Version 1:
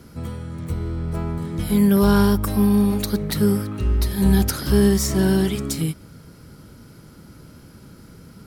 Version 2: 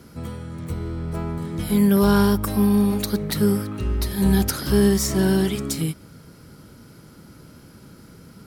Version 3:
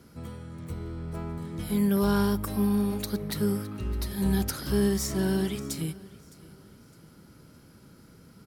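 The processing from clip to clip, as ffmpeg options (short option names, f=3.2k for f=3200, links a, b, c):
-af "lowshelf=f=84:g=-6.5"
-af "aecho=1:1:611|1222|1833:0.0841|0.0311|0.0115,volume=-7.5dB"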